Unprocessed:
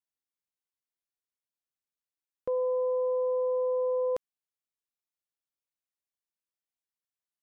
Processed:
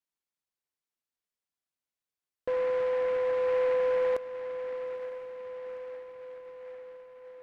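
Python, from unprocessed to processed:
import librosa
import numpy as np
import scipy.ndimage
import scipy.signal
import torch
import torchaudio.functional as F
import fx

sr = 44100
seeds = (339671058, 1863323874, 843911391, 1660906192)

p1 = x + fx.echo_diffused(x, sr, ms=923, feedback_pct=60, wet_db=-11.5, dry=0)
y = fx.noise_mod_delay(p1, sr, seeds[0], noise_hz=1200.0, depth_ms=0.047)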